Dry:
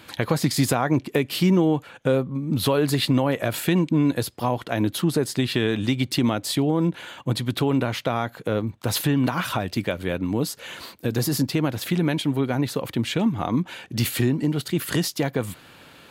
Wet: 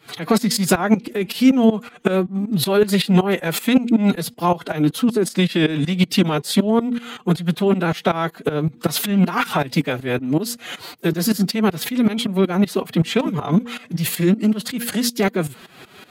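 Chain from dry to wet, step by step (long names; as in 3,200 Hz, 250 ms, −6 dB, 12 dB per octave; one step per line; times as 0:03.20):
hum removal 168.1 Hz, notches 2
shaped tremolo saw up 5.3 Hz, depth 90%
phase-vocoder pitch shift with formants kept +6 semitones
level +9 dB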